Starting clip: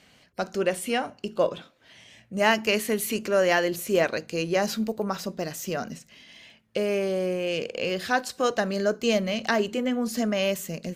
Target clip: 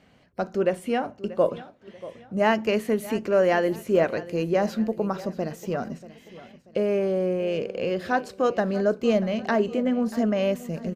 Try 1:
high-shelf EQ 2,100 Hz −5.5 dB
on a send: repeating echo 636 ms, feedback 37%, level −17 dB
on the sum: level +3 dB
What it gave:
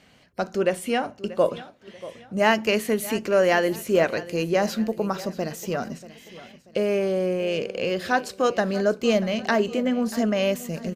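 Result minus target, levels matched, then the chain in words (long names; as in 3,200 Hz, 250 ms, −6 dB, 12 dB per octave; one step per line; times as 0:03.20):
4,000 Hz band +6.0 dB
high-shelf EQ 2,100 Hz −15.5 dB
on a send: repeating echo 636 ms, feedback 37%, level −17 dB
on the sum: level +3 dB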